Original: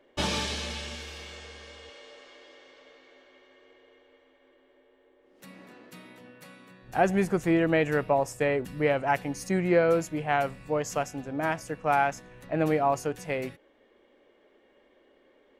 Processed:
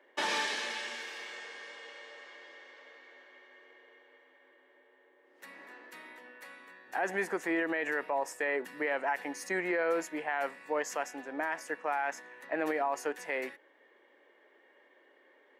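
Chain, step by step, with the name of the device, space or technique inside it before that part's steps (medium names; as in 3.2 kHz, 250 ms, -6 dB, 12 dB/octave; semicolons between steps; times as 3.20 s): laptop speaker (high-pass 290 Hz 24 dB/octave; peaking EQ 930 Hz +7 dB 0.39 oct; peaking EQ 1.8 kHz +11.5 dB 0.55 oct; peak limiter -18 dBFS, peak gain reduction 11 dB); trim -4 dB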